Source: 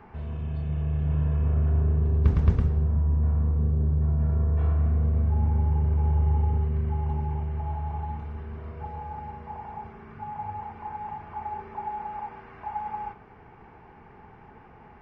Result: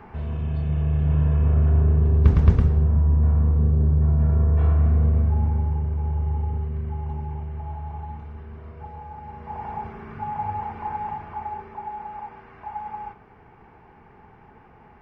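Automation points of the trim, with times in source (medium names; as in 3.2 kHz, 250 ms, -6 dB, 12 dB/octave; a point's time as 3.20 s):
5.08 s +5 dB
5.92 s -2 dB
9.20 s -2 dB
9.66 s +6.5 dB
10.96 s +6.5 dB
11.80 s -0.5 dB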